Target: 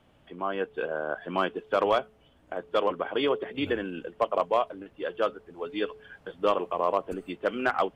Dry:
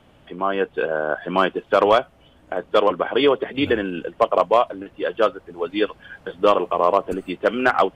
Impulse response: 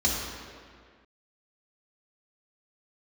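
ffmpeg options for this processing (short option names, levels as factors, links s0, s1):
-af "bandreject=f=216.1:t=h:w=4,bandreject=f=432.2:t=h:w=4,volume=0.376"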